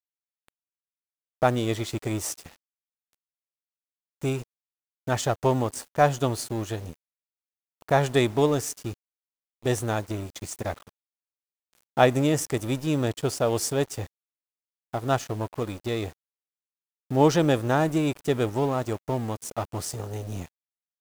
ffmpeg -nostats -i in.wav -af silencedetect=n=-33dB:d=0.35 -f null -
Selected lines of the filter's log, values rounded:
silence_start: 0.00
silence_end: 1.42 | silence_duration: 1.42
silence_start: 2.47
silence_end: 4.22 | silence_duration: 1.75
silence_start: 4.43
silence_end: 5.08 | silence_duration: 0.65
silence_start: 6.93
silence_end: 7.82 | silence_duration: 0.89
silence_start: 8.93
silence_end: 9.66 | silence_duration: 0.72
silence_start: 10.78
silence_end: 11.97 | silence_duration: 1.19
silence_start: 14.06
silence_end: 14.94 | silence_duration: 0.88
silence_start: 16.09
silence_end: 17.11 | silence_duration: 1.01
silence_start: 20.46
silence_end: 21.01 | silence_duration: 0.55